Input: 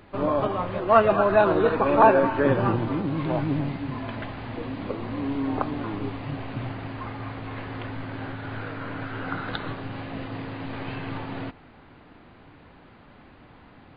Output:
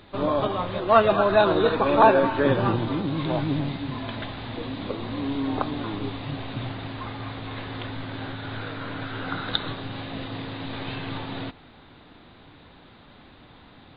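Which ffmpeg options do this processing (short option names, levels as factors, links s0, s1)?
-af "equalizer=f=3700:t=o:w=0.41:g=13.5"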